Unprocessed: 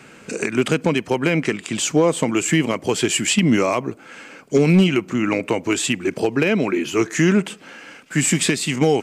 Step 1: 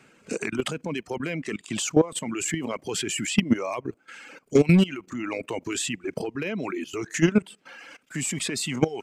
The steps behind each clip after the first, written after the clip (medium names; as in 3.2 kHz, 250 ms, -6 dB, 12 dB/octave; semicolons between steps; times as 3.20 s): level held to a coarse grid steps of 14 dB; reverb removal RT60 1.2 s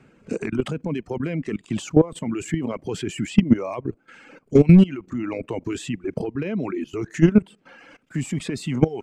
tilt EQ -3 dB/octave; trim -1 dB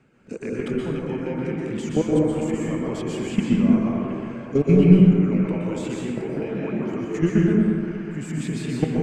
feedback echo behind a band-pass 718 ms, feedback 68%, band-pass 1.4 kHz, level -12 dB; plate-style reverb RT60 2.4 s, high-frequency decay 0.35×, pre-delay 110 ms, DRR -5 dB; trim -6.5 dB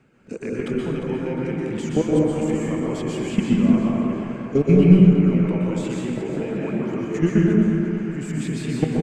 feedback delay 353 ms, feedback 36%, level -10.5 dB; trim +1 dB